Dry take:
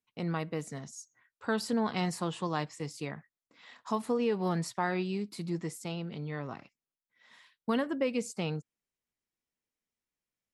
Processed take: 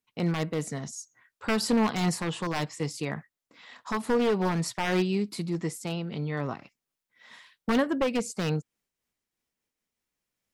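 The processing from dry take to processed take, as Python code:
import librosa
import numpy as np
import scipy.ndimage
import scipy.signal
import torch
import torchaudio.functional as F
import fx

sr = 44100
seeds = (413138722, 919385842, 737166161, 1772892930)

y = np.minimum(x, 2.0 * 10.0 ** (-25.5 / 20.0) - x)
y = fx.am_noise(y, sr, seeds[0], hz=5.7, depth_pct=55)
y = F.gain(torch.from_numpy(y), 9.0).numpy()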